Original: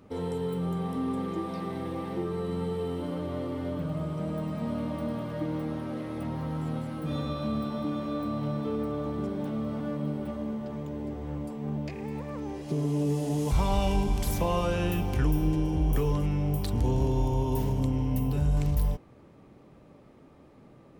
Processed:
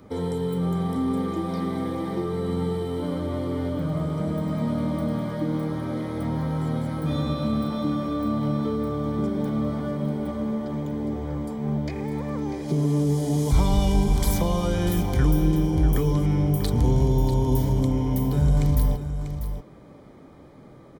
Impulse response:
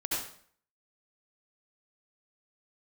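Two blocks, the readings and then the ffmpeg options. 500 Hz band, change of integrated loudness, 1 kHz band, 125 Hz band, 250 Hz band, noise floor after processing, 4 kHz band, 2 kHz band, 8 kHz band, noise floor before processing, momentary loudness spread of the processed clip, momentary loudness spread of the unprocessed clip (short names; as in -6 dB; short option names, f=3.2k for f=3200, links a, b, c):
+4.0 dB, +5.5 dB, +3.0 dB, +6.0 dB, +6.0 dB, -47 dBFS, +5.0 dB, +3.0 dB, +6.5 dB, -54 dBFS, 8 LU, 8 LU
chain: -filter_complex "[0:a]acrossover=split=340|3000[a][b][c];[b]acompressor=threshold=-38dB:ratio=2.5[d];[a][d][c]amix=inputs=3:normalize=0,asuperstop=centerf=2700:order=12:qfactor=7.1,asplit=2[e][f];[f]aecho=0:1:643:0.316[g];[e][g]amix=inputs=2:normalize=0,volume=6dB"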